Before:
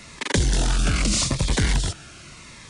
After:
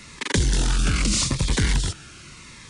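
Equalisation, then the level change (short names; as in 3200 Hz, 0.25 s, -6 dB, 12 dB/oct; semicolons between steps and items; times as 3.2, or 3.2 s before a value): bell 660 Hz -8.5 dB 0.49 oct; 0.0 dB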